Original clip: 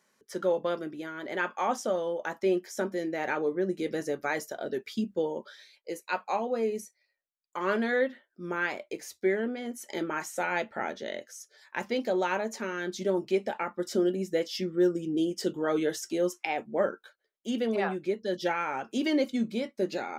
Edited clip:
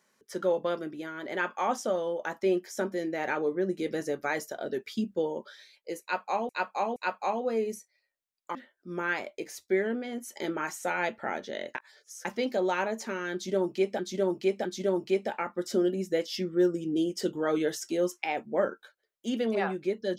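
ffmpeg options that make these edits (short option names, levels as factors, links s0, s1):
-filter_complex "[0:a]asplit=8[s0][s1][s2][s3][s4][s5][s6][s7];[s0]atrim=end=6.492[s8];[s1]atrim=start=6.018:end=6.492[s9];[s2]atrim=start=6.018:end=7.612[s10];[s3]atrim=start=8.078:end=11.282[s11];[s4]atrim=start=11.278:end=11.782,asetpts=PTS-STARTPTS,areverse[s12];[s5]atrim=start=11.778:end=13.522[s13];[s6]atrim=start=12.858:end=13.522[s14];[s7]atrim=start=12.858[s15];[s8][s9]acrossfade=d=0.004:c1=hsin:c2=hsin[s16];[s16][s10]acrossfade=d=0.004:c1=hsin:c2=hsin[s17];[s17][s11]acrossfade=d=0.004:c1=hsin:c2=hsin[s18];[s18][s12]acrossfade=d=0.004:c1=hsin:c2=hsin[s19];[s19][s13]acrossfade=d=0.004:c1=hsin:c2=hsin[s20];[s20][s14]acrossfade=d=0.004:c1=hsin:c2=hsin[s21];[s21][s15]acrossfade=d=0.004:c1=hsin:c2=hsin"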